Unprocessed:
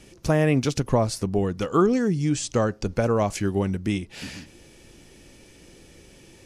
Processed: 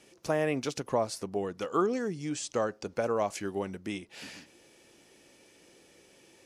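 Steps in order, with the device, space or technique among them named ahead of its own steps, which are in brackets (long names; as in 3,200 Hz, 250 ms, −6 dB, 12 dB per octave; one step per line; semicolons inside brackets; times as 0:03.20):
filter by subtraction (in parallel: low-pass filter 600 Hz 12 dB per octave + polarity inversion)
on the sum: level −7 dB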